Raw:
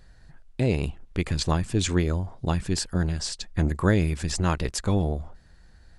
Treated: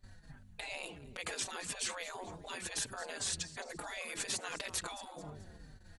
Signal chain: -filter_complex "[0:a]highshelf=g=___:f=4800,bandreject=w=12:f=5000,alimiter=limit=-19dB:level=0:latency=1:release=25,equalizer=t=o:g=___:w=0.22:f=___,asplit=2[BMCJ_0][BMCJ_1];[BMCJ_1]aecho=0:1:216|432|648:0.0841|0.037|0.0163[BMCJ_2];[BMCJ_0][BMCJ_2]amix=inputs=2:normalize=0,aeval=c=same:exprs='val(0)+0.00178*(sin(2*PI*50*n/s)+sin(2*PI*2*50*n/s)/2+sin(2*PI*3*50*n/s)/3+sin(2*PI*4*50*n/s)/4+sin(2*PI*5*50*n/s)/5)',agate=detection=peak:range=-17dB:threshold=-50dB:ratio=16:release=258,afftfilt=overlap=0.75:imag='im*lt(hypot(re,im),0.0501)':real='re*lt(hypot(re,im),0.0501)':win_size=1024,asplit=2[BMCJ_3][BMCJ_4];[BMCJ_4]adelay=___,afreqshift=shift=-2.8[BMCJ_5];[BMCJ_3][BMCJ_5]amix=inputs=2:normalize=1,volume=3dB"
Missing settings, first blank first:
3.5, -11, 67, 4.6